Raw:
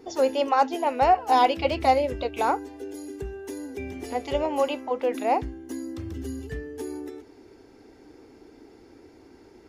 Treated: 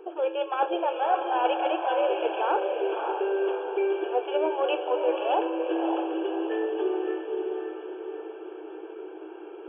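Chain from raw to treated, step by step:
stylus tracing distortion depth 0.22 ms
brick-wall band-pass 310–3,400 Hz
reversed playback
downward compressor 6 to 1, threshold −33 dBFS, peak gain reduction 17.5 dB
reversed playback
Butterworth band-reject 2,000 Hz, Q 2.8
feedback delay with all-pass diffusion 581 ms, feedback 48%, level −4 dB
on a send at −11.5 dB: convolution reverb RT60 0.90 s, pre-delay 4 ms
on the sum: level +9 dB

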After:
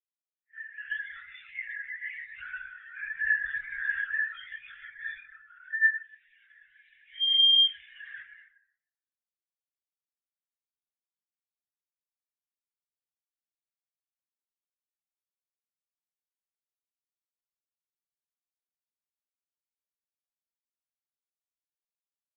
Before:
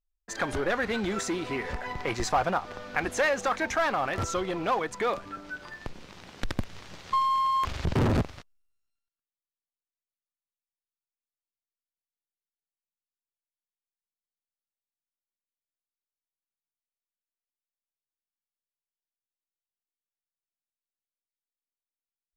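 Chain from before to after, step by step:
turntable start at the beginning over 1.13 s
Butterworth high-pass 1,600 Hz 72 dB per octave
comb filter 2.9 ms, depth 78%
dynamic equaliser 2,200 Hz, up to −5 dB, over −45 dBFS, Q 1.8
leveller curve on the samples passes 3
soft clipping −30 dBFS, distortion −11 dB
high-frequency loss of the air 79 metres
on a send: single-tap delay 122 ms −16 dB
on the sum: dense smooth reverb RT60 2.1 s, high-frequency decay 0.45×, DRR −6.5 dB
linear-prediction vocoder at 8 kHz whisper
every bin expanded away from the loudest bin 2.5 to 1
level +2.5 dB

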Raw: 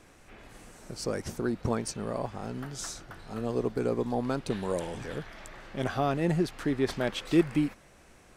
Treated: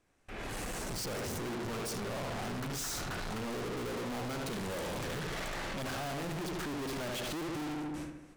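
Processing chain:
noise gate with hold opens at −44 dBFS
automatic gain control gain up to 15.5 dB
on a send: feedback echo with a low-pass in the loop 73 ms, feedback 57%, low-pass 2,600 Hz, level −7 dB
on the sum: hard clipping −39.5 dBFS, distortion 0 dB
level +2.5 dB

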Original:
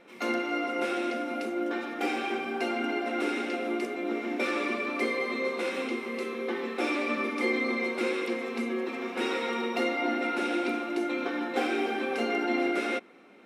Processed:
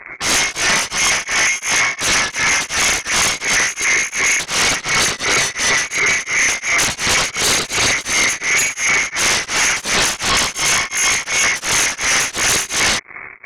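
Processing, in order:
adaptive Wiener filter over 15 samples
leveller curve on the samples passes 3
reversed playback
upward compression, threshold −40 dBFS
reversed playback
voice inversion scrambler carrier 2,500 Hz
sine wavefolder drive 14 dB, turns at −11 dBFS
tremolo along a rectified sine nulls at 2.8 Hz

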